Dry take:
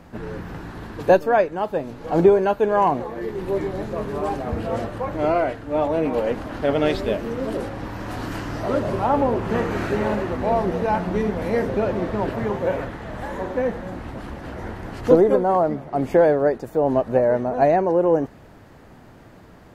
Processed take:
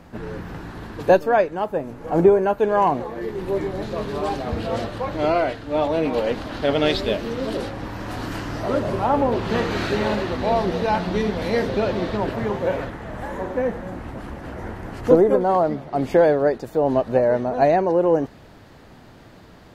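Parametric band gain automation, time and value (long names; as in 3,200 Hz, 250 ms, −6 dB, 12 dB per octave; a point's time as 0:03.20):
parametric band 4,000 Hz 1.1 octaves
+1.5 dB
from 0:01.64 −7 dB
from 0:02.58 +2 dB
from 0:03.82 +10 dB
from 0:07.71 +3 dB
from 0:09.32 +12 dB
from 0:12.17 +4.5 dB
from 0:12.90 −2.5 dB
from 0:15.41 +7 dB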